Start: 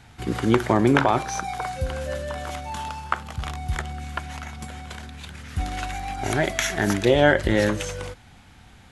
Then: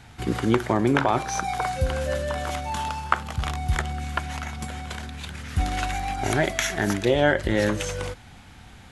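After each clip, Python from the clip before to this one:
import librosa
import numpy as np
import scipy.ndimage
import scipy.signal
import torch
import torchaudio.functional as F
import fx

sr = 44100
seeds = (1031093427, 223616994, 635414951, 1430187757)

y = fx.rider(x, sr, range_db=3, speed_s=0.5)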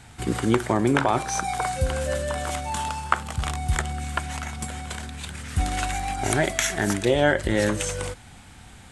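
y = fx.peak_eq(x, sr, hz=8500.0, db=11.0, octaves=0.47)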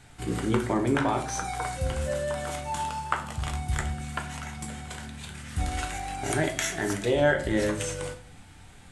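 y = fx.room_shoebox(x, sr, seeds[0], volume_m3=40.0, walls='mixed', distance_m=0.43)
y = y * librosa.db_to_amplitude(-6.5)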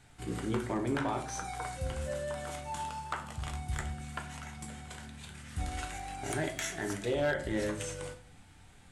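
y = np.clip(x, -10.0 ** (-17.0 / 20.0), 10.0 ** (-17.0 / 20.0))
y = y * librosa.db_to_amplitude(-7.0)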